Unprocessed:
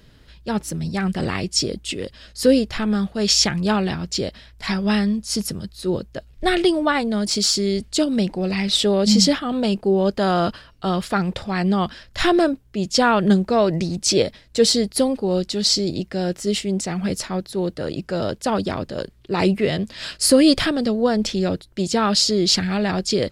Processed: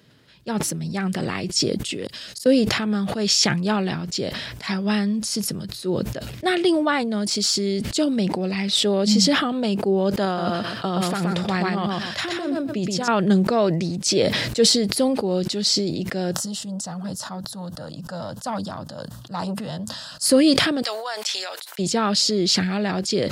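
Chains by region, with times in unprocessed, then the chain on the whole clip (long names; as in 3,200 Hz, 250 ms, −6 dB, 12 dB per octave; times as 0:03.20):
0:02.05–0:02.46: high-shelf EQ 3,300 Hz +11.5 dB + gate with flip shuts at −19 dBFS, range −33 dB
0:10.25–0:13.08: compressor whose output falls as the input rises −23 dBFS + repeating echo 125 ms, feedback 16%, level −3 dB
0:16.31–0:20.26: phaser with its sweep stopped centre 930 Hz, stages 4 + saturating transformer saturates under 900 Hz
0:20.82–0:21.79: high-pass filter 790 Hz 24 dB per octave + high-shelf EQ 6,100 Hz +6.5 dB
whole clip: high-pass filter 110 Hz 24 dB per octave; level that may fall only so fast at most 36 dB per second; level −2.5 dB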